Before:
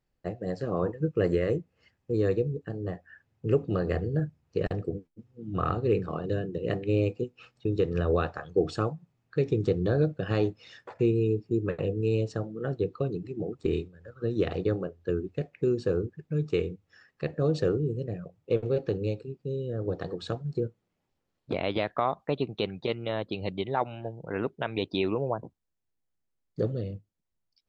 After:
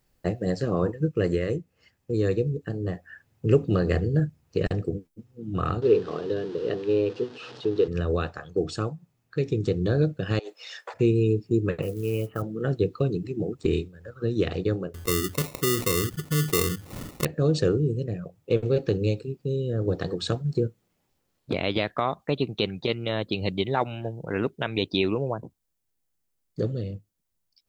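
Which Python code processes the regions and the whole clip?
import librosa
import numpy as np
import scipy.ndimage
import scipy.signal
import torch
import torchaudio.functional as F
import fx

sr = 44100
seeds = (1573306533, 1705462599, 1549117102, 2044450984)

y = fx.chain(x, sr, fx.zero_step(step_db=-37.0),
    fx.cabinet(low_hz=170.0, low_slope=12, high_hz=4500.0, hz=(180.0, 430.0, 2200.0), db=(-7, 8, -9)), at=(5.82, 7.88))
y = fx.chain(y, sr, fx.highpass(hz=500.0, slope=24),
    fx.over_compress(threshold_db=-40.0, ratio=-1.0), at=(10.39, 10.94))
y = fx.chain(y, sr, fx.cheby_ripple(hz=3100.0, ripple_db=6),
    fx.peak_eq(hz=1300.0, db=15.0, octaves=0.3),
    fx.quant_float(bits=4), at=(11.82, 12.42))
y = fx.chain(y, sr, fx.highpass(hz=45.0, slope=12),
    fx.sample_hold(seeds[0], rate_hz=1600.0, jitter_pct=0),
    fx.env_flatten(amount_pct=50), at=(14.94, 17.25))
y = fx.high_shelf(y, sr, hz=6100.0, db=10.5)
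y = fx.rider(y, sr, range_db=10, speed_s=2.0)
y = fx.dynamic_eq(y, sr, hz=790.0, q=0.82, threshold_db=-40.0, ratio=4.0, max_db=-5)
y = y * librosa.db_to_amplitude(3.0)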